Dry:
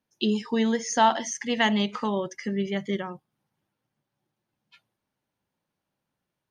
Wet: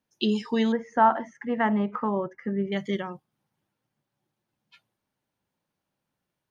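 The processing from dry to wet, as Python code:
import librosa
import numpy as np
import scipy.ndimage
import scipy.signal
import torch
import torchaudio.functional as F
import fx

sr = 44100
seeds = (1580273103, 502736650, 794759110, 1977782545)

y = fx.curve_eq(x, sr, hz=(770.0, 1400.0, 4100.0), db=(0, 3, -29), at=(0.72, 2.72))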